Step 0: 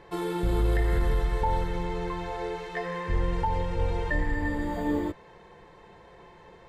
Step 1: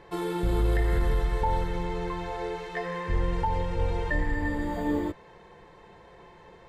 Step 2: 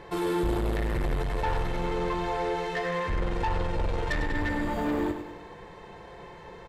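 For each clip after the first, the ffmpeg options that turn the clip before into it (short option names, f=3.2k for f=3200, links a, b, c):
-af anull
-filter_complex "[0:a]asoftclip=type=tanh:threshold=-30dB,asplit=2[a][b];[b]aecho=0:1:100|200|300|400|500|600:0.355|0.174|0.0852|0.0417|0.0205|0.01[c];[a][c]amix=inputs=2:normalize=0,volume=5.5dB"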